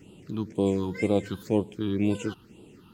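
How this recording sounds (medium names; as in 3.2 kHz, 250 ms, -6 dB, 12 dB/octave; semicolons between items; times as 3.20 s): phasing stages 6, 2 Hz, lowest notch 550–1700 Hz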